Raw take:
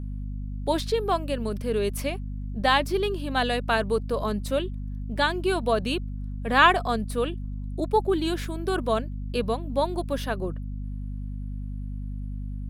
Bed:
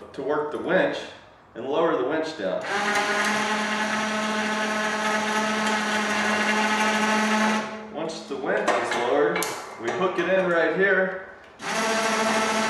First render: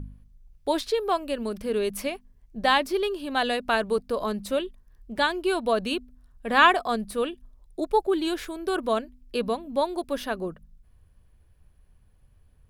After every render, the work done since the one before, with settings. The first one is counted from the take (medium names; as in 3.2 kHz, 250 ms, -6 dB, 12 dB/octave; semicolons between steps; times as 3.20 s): de-hum 50 Hz, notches 5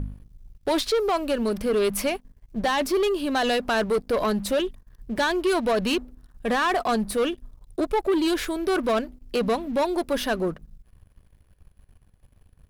peak limiter -16.5 dBFS, peak gain reduction 11.5 dB; waveshaping leveller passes 2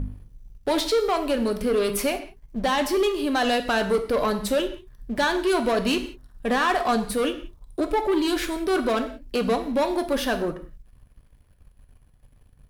gated-style reverb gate 210 ms falling, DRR 6.5 dB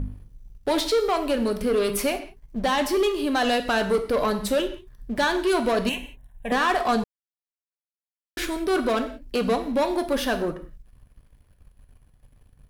5.89–6.52 s: static phaser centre 1.3 kHz, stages 6; 7.04–8.37 s: mute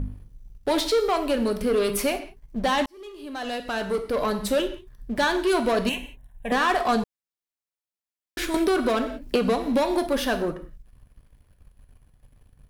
2.86–4.55 s: fade in; 8.54–10.07 s: three bands compressed up and down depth 100%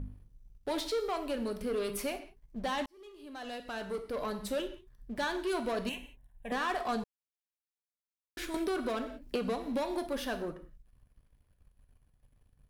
trim -11 dB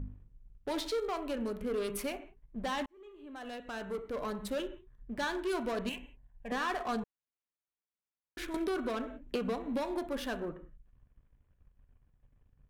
local Wiener filter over 9 samples; peaking EQ 660 Hz -2.5 dB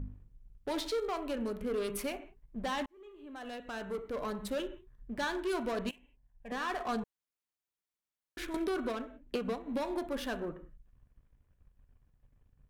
5.91–6.88 s: fade in, from -19.5 dB; 8.92–9.80 s: upward expansion, over -43 dBFS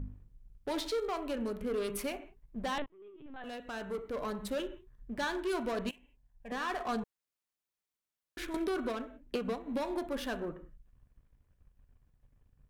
2.78–3.44 s: LPC vocoder at 8 kHz pitch kept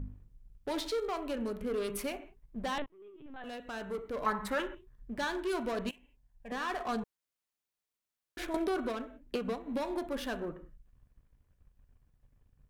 4.26–4.75 s: high-order bell 1.3 kHz +12.5 dB; 8.38–8.85 s: peaking EQ 700 Hz +14 dB -> +3 dB